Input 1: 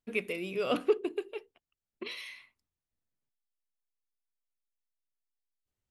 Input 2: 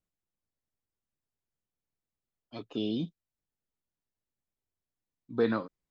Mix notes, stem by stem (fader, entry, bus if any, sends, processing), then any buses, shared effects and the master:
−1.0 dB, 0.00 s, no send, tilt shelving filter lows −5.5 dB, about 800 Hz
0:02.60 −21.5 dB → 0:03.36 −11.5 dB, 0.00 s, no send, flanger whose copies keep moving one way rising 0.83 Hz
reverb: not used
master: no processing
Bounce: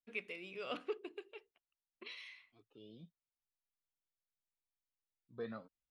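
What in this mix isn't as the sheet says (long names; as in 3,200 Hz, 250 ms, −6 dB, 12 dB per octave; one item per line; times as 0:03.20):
stem 1 −1.0 dB → −11.0 dB
master: extra high-frequency loss of the air 99 metres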